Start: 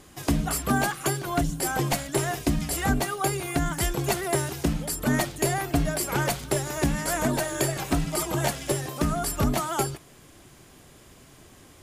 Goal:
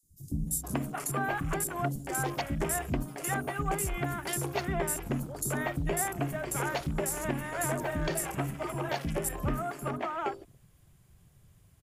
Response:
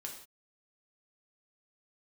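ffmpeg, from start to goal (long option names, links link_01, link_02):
-filter_complex "[0:a]asplit=2[link_01][link_02];[link_02]acompressor=threshold=-31dB:ratio=12,volume=-2dB[link_03];[link_01][link_03]amix=inputs=2:normalize=0,equalizer=frequency=60:width_type=o:width=0.29:gain=-6,acrossover=split=260|5600[link_04][link_05][link_06];[link_04]adelay=30[link_07];[link_05]adelay=470[link_08];[link_07][link_08][link_06]amix=inputs=3:normalize=0,afwtdn=0.0158,highshelf=frequency=8800:gain=10,volume=-7dB"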